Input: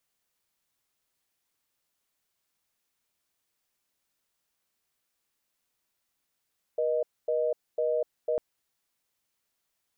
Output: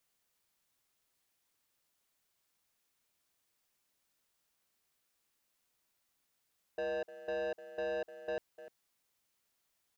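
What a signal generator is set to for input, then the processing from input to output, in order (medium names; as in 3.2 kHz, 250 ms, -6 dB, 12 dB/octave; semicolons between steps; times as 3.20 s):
call progress tone reorder tone, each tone -27 dBFS 1.60 s
speakerphone echo 300 ms, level -18 dB; saturation -34 dBFS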